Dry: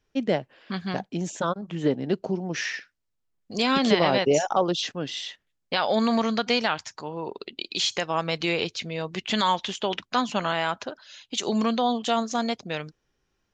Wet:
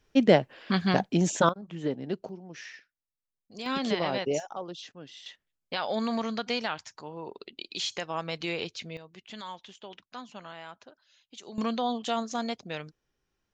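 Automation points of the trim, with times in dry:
+5 dB
from 1.49 s -7 dB
from 2.29 s -14.5 dB
from 3.66 s -8 dB
from 4.40 s -15 dB
from 5.26 s -7 dB
from 8.97 s -18 dB
from 11.58 s -5.5 dB

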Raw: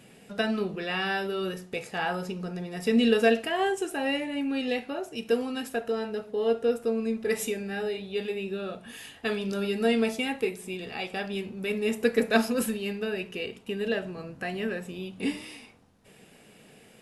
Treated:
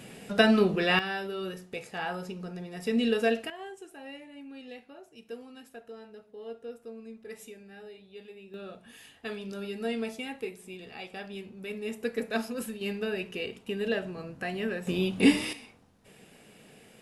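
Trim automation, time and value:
+6.5 dB
from 0.99 s -4.5 dB
from 3.50 s -16 dB
from 8.54 s -8 dB
from 12.81 s -1 dB
from 14.87 s +9 dB
from 15.53 s -0.5 dB

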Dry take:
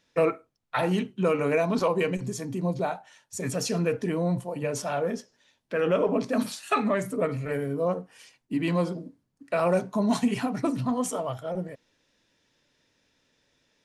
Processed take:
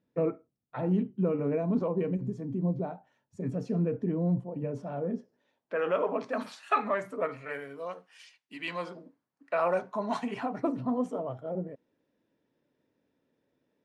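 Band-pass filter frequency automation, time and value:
band-pass filter, Q 0.81
5.17 s 200 Hz
5.85 s 1.1 kHz
7.22 s 1.1 kHz
7.93 s 2.9 kHz
8.60 s 2.9 kHz
9.06 s 1.1 kHz
10.19 s 1.1 kHz
11.12 s 310 Hz

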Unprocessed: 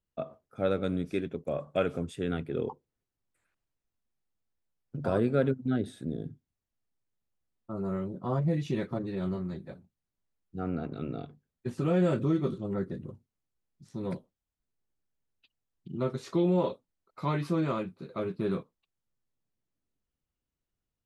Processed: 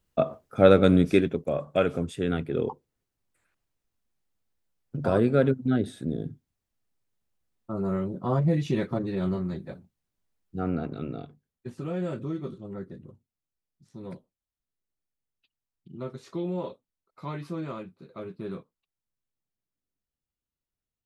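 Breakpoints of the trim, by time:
1.11 s +12 dB
1.51 s +4.5 dB
10.71 s +4.5 dB
11.87 s -5.5 dB

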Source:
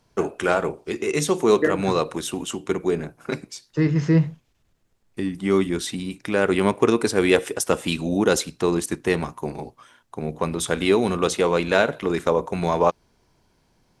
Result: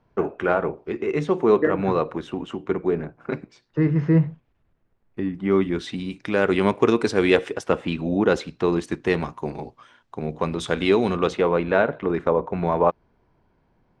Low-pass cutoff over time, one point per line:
5.41 s 1.9 kHz
6.16 s 4.8 kHz
7.26 s 4.8 kHz
7.93 s 2.1 kHz
9.17 s 4.5 kHz
11.10 s 4.5 kHz
11.55 s 1.8 kHz

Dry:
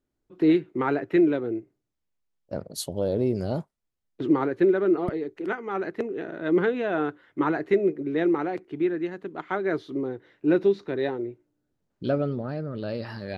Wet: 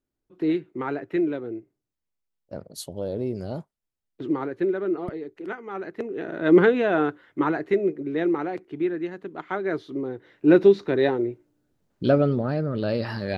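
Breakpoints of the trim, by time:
5.90 s -4 dB
6.53 s +7 dB
7.69 s -0.5 dB
10.06 s -0.5 dB
10.55 s +6 dB

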